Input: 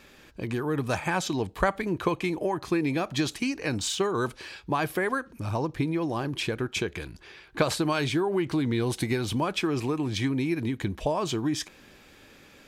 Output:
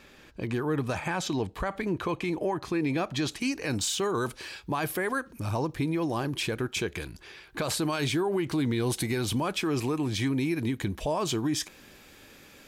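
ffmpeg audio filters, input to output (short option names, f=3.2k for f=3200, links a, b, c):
-af "asetnsamples=n=441:p=0,asendcmd='3.41 highshelf g 8.5',highshelf=f=7.5k:g=-4,alimiter=limit=-20dB:level=0:latency=1:release=23"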